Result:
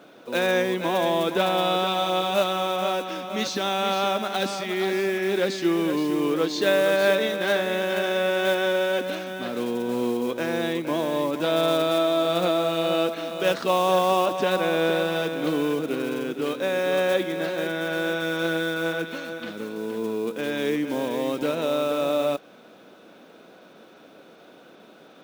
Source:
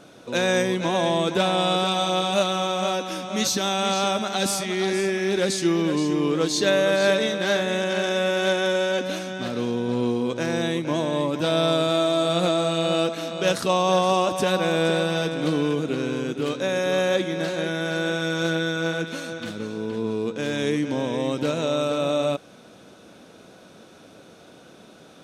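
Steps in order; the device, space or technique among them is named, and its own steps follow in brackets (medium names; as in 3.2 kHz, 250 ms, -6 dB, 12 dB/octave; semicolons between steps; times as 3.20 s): early digital voice recorder (band-pass 230–3600 Hz; block-companded coder 5-bit)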